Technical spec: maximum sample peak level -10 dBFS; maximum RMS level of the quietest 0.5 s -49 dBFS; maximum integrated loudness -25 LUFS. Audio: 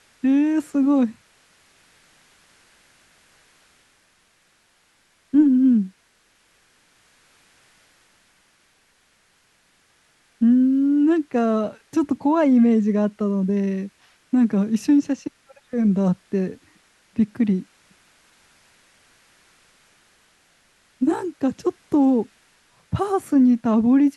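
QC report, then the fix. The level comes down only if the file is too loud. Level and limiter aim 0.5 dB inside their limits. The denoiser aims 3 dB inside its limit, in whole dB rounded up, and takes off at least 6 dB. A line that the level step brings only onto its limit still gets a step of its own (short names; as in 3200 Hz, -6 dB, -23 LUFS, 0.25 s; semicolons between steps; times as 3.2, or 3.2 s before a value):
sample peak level -7.0 dBFS: fail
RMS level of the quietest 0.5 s -62 dBFS: OK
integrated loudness -20.5 LUFS: fail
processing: gain -5 dB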